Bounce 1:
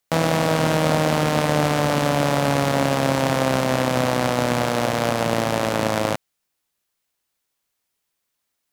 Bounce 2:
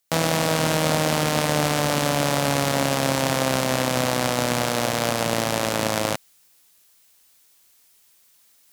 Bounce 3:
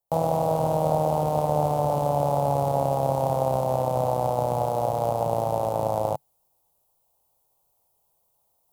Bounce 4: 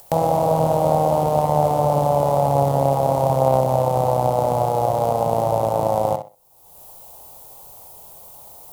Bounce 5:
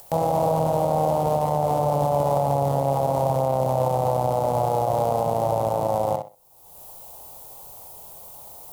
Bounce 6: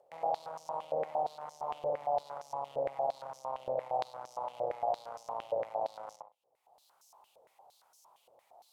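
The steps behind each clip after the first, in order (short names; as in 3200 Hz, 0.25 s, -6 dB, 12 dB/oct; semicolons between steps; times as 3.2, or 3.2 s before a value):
high shelf 3100 Hz +9 dB; reverse; upward compressor, threshold -41 dBFS; reverse; gain -3 dB
EQ curve 140 Hz 0 dB, 250 Hz -12 dB, 510 Hz 0 dB, 850 Hz +4 dB, 1700 Hz -28 dB, 2900 Hz -22 dB, 5700 Hz -21 dB, 13000 Hz -11 dB
upward compressor, threshold -28 dBFS; tape echo 63 ms, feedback 25%, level -8 dB, low-pass 5800 Hz; gain +5 dB
limiter -12.5 dBFS, peak gain reduction 8 dB
stepped band-pass 8.7 Hz 520–5800 Hz; gain -4.5 dB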